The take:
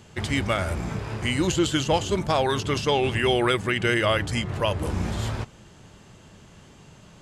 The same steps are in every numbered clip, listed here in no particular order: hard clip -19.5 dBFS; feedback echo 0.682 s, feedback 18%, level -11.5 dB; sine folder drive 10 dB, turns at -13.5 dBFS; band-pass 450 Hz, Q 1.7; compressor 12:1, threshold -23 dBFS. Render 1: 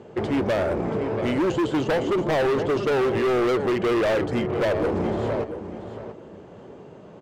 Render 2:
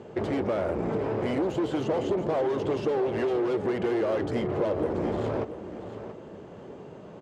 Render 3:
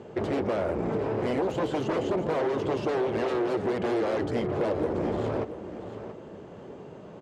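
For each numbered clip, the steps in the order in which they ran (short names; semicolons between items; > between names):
band-pass > compressor > sine folder > feedback echo > hard clip; hard clip > sine folder > band-pass > compressor > feedback echo; sine folder > band-pass > compressor > feedback echo > hard clip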